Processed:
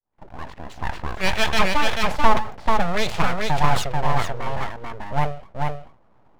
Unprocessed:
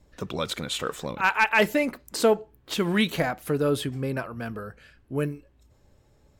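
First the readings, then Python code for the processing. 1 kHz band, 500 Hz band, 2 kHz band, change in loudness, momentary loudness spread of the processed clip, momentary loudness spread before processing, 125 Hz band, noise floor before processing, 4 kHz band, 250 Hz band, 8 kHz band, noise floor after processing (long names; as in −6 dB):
+8.0 dB, −1.5 dB, +1.0 dB, +2.5 dB, 14 LU, 14 LU, +5.0 dB, −61 dBFS, +4.0 dB, −2.0 dB, +1.5 dB, −55 dBFS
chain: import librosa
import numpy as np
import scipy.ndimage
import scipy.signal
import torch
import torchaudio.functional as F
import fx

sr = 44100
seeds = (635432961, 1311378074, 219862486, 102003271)

p1 = fx.fade_in_head(x, sr, length_s=1.42)
p2 = fx.peak_eq(p1, sr, hz=430.0, db=8.5, octaves=2.6)
p3 = fx.env_lowpass(p2, sr, base_hz=750.0, full_db=-15.5)
p4 = fx.rider(p3, sr, range_db=3, speed_s=0.5)
p5 = p3 + (p4 * librosa.db_to_amplitude(-1.5))
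p6 = fx.bandpass_edges(p5, sr, low_hz=190.0, high_hz=5700.0)
p7 = np.abs(p6)
p8 = p7 + fx.echo_single(p7, sr, ms=438, db=-3.0, dry=0)
p9 = fx.dynamic_eq(p8, sr, hz=280.0, q=1.7, threshold_db=-35.0, ratio=4.0, max_db=-7)
p10 = fx.sustainer(p9, sr, db_per_s=120.0)
y = p10 * librosa.db_to_amplitude(-4.5)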